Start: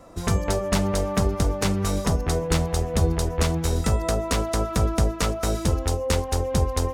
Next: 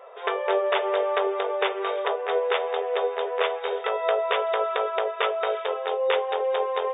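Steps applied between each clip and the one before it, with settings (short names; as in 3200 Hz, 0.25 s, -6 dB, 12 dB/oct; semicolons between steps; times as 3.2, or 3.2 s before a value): FFT band-pass 380–3700 Hz; gain +4 dB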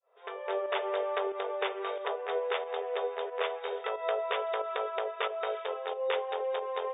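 opening faded in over 0.67 s; pump 91 bpm, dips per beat 1, -8 dB, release 0.118 s; gain -7.5 dB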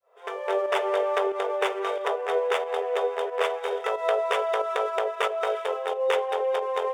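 median filter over 9 samples; gain +7 dB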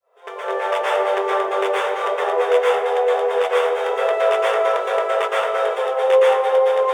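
plate-style reverb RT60 0.89 s, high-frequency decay 0.55×, pre-delay 0.105 s, DRR -6.5 dB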